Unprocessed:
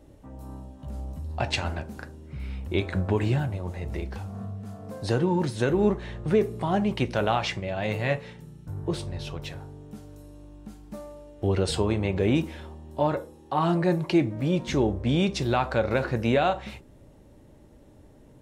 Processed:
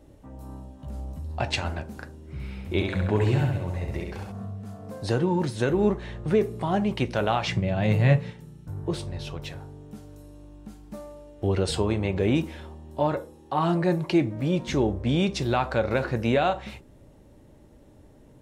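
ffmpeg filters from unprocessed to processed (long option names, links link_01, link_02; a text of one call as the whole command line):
ffmpeg -i in.wav -filter_complex "[0:a]asettb=1/sr,asplit=3[link_01][link_02][link_03];[link_01]atrim=end=2.214[link_04];[link_02]atrim=start=2.21:end=4.32,asetpts=PTS-STARTPTS,afade=type=in:duration=0.004:curve=qsin,afade=type=out:start_time=2.106:duration=0.004:curve=qsin,aecho=1:1:67|134|201|268|335|402|469:0.631|0.328|0.171|0.0887|0.0461|0.024|0.0125,atrim=end_sample=93051[link_05];[link_03]atrim=start=4.316[link_06];[link_04][link_05]acrossfade=duration=0.004:curve1=hsin:curve2=qsin[link_07];[link_07][link_06]acrossfade=duration=0.004:curve1=qsin:curve2=hsin,asettb=1/sr,asplit=3[link_08][link_09][link_10];[link_08]atrim=end=7.474[link_11];[link_09]atrim=start=7.47:end=8.31,asetpts=PTS-STARTPTS,afade=type=in:duration=0.004:curve=qsin,afade=type=out:start_time=0.836:duration=0.004:curve=qsin,equalizer=frequency=140:width_type=o:width=1.6:gain=12[link_12];[link_10]atrim=start=8.306[link_13];[link_11][link_12]acrossfade=duration=0.004:curve1=hsin:curve2=qsin[link_14];[link_14][link_13]acrossfade=duration=0.004:curve1=qsin:curve2=hsin" out.wav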